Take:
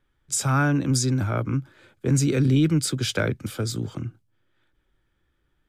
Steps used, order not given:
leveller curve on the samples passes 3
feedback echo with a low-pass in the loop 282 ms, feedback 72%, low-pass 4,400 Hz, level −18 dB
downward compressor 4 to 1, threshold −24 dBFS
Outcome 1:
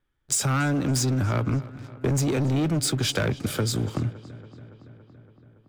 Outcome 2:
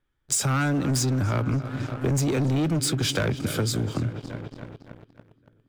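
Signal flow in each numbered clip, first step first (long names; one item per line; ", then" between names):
leveller curve on the samples, then downward compressor, then feedback echo with a low-pass in the loop
feedback echo with a low-pass in the loop, then leveller curve on the samples, then downward compressor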